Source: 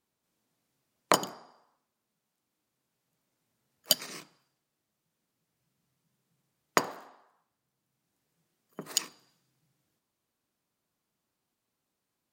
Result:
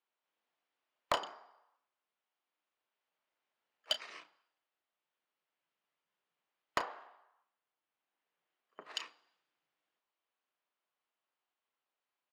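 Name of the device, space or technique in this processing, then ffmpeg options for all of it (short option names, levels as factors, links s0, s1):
megaphone: -filter_complex "[0:a]highpass=670,lowpass=2800,equalizer=f=3000:t=o:w=0.42:g=4,asoftclip=type=hard:threshold=0.119,asplit=2[s0][s1];[s1]adelay=33,volume=0.251[s2];[s0][s2]amix=inputs=2:normalize=0,asettb=1/sr,asplit=3[s3][s4][s5];[s3]atrim=end=6.844[s6];[s4]atrim=start=6.84:end=8.94,asetpts=PTS-STARTPTS,afade=t=in:d=0.004:c=qsin,afade=t=out:st=2.096:d=0.004:c=qsin,equalizer=f=11000:t=o:w=1.5:g=-6[s7];[s5]atrim=start=8.936[s8];[s6][s7]acrossfade=d=0.004:c1=hsin:c2=qsin[s9];[s9][s8]acrossfade=d=0.004:c1=qsin:c2=hsin,volume=0.708"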